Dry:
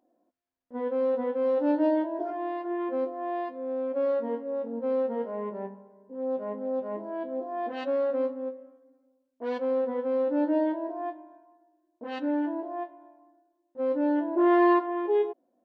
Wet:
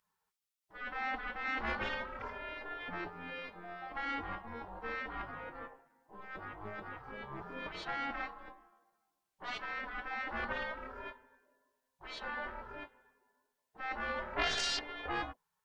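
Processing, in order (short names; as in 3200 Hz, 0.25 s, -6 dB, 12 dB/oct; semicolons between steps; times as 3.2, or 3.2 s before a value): added harmonics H 5 -6 dB, 7 -15 dB, 8 -17 dB, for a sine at -13.5 dBFS; spectral gate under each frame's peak -20 dB weak; gain -1 dB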